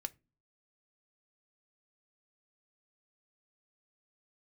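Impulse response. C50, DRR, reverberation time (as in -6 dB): 25.5 dB, 8.5 dB, no single decay rate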